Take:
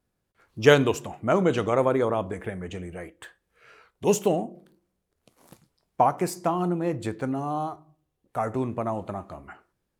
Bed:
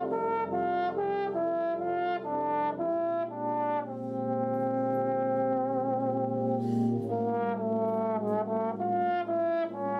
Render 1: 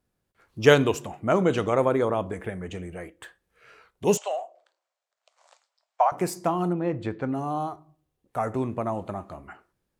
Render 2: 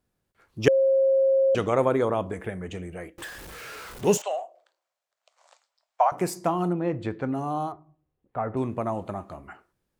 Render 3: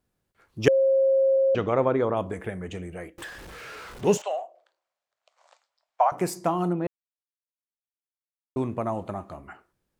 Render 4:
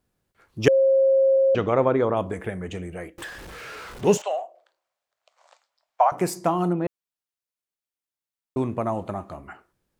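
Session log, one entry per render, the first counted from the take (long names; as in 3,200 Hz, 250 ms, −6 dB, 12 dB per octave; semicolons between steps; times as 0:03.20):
0:04.17–0:06.12: Chebyshev band-pass filter 600–7,800 Hz, order 4; 0:06.73–0:07.33: low-pass filter 3,400 Hz
0:00.68–0:01.55: beep over 537 Hz −17 dBFS; 0:03.18–0:04.22: converter with a step at zero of −36 dBFS; 0:07.72–0:08.57: high-frequency loss of the air 430 metres
0:01.36–0:02.17: high-frequency loss of the air 170 metres; 0:03.23–0:06.10: high-shelf EQ 7,800 Hz −11 dB; 0:06.87–0:08.56: silence
level +2.5 dB; brickwall limiter −3 dBFS, peak gain reduction 1.5 dB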